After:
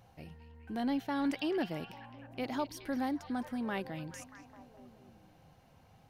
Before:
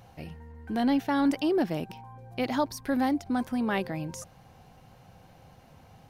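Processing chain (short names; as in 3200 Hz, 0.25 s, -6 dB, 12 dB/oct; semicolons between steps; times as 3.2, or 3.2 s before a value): 1.24–1.64 bell 2300 Hz +6.5 dB 1.5 oct; on a send: delay with a stepping band-pass 0.211 s, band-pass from 3500 Hz, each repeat -0.7 oct, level -7.5 dB; on the sum: gain -8 dB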